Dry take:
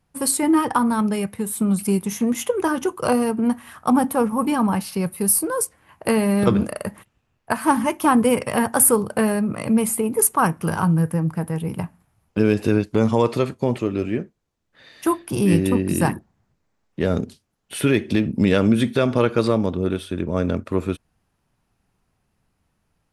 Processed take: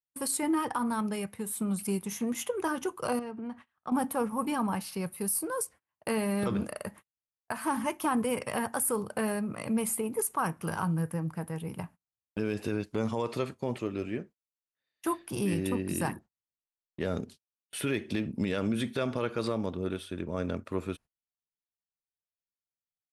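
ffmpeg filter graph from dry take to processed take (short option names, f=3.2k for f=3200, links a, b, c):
-filter_complex "[0:a]asettb=1/sr,asplit=3[a][b][c];[a]atrim=end=3.194[d];[b]atrim=start=3.19:end=3.92,asetpts=PTS-STARTPTS,afade=t=in:d=0.004:c=qsin,afade=t=out:st=0.726:d=0.004:c=qsin,lowpass=3.9k,acompressor=threshold=-30dB:ratio=2:attack=3.2:release=140:knee=1:detection=peak[e];[c]atrim=start=3.916[f];[d][e]acrossfade=d=0.004:c1=hsin:c2=qsin[g];[g][f]acrossfade=d=0.004:c1=qsin:c2=hsin,agate=range=-31dB:threshold=-37dB:ratio=16:detection=peak,lowshelf=f=490:g=-4.5,alimiter=limit=-12.5dB:level=0:latency=1:release=43,volume=-7.5dB"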